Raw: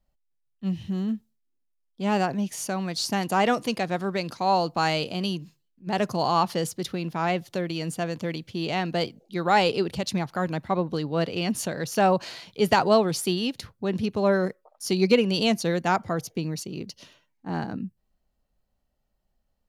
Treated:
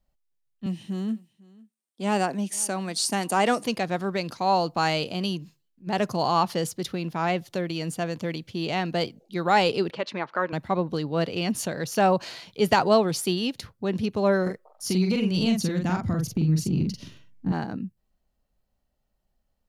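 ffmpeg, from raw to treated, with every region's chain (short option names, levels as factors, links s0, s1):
-filter_complex "[0:a]asettb=1/sr,asplit=3[s0][s1][s2];[s0]atrim=end=0.664[s3];[s1]atrim=start=0.66:end=3.64,asetpts=PTS-STARTPTS,afade=t=in:d=0.004:c=qsin,afade=t=out:st=2.976:d=0.004:c=qsin,highpass=f=180:w=0.5412,highpass=f=180:w=1.3066,equalizer=f=8800:t=o:w=0.41:g=12,aecho=1:1:501:0.0668,atrim=end_sample=131418[s4];[s2]atrim=start=3.636[s5];[s3][s4]acrossfade=d=0.004:c1=hsin:c2=qsin[s6];[s6][s5]acrossfade=d=0.004:c1=qsin:c2=hsin,asettb=1/sr,asplit=3[s7][s8][s9];[s7]atrim=end=9.904[s10];[s8]atrim=start=9.9:end=10.53,asetpts=PTS-STARTPTS,afade=t=in:d=0.004:c=qsin,afade=t=out:st=0.626:d=0.004:c=qsin,equalizer=f=750:t=o:w=0.23:g=-11.5,acontrast=48,highpass=470,lowpass=2200[s11];[s9]atrim=start=10.526[s12];[s10][s11]acrossfade=d=0.004:c1=hsin:c2=qsin[s13];[s13][s12]acrossfade=d=0.004:c1=qsin:c2=hsin,asettb=1/sr,asplit=3[s14][s15][s16];[s14]atrim=end=14.424[s17];[s15]atrim=start=14.42:end=17.52,asetpts=PTS-STARTPTS,afade=t=in:d=0.004:c=qsin,afade=t=out:st=3.096:d=0.004:c=qsin,asubboost=boost=12:cutoff=220,acompressor=threshold=0.0891:ratio=6:attack=3.2:release=140:knee=1:detection=peak,asplit=2[s18][s19];[s19]adelay=44,volume=0.668[s20];[s18][s20]amix=inputs=2:normalize=0,atrim=end_sample=136710[s21];[s16]atrim=start=17.516[s22];[s17][s21]acrossfade=d=0.004:c1=hsin:c2=qsin[s23];[s23][s22]acrossfade=d=0.004:c1=qsin:c2=hsin"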